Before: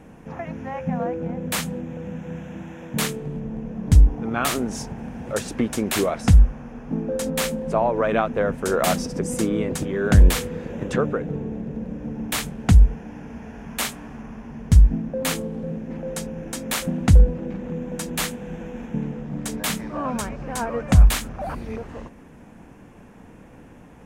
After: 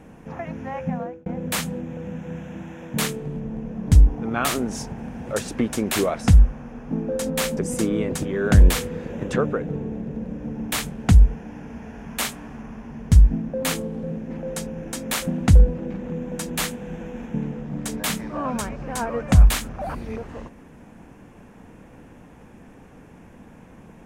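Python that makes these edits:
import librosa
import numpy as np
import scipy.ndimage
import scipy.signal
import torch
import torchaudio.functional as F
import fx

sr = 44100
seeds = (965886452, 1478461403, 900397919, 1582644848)

y = fx.edit(x, sr, fx.fade_out_span(start_s=0.86, length_s=0.4),
    fx.cut(start_s=7.57, length_s=1.6), tone=tone)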